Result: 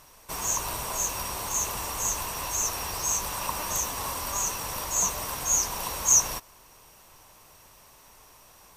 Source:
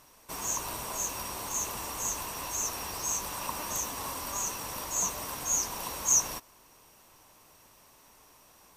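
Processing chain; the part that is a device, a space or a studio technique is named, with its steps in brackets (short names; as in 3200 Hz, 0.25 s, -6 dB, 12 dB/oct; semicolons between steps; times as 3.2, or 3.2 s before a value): low shelf boost with a cut just above (low shelf 68 Hz +6 dB; bell 270 Hz -5 dB 0.83 oct); gain +4.5 dB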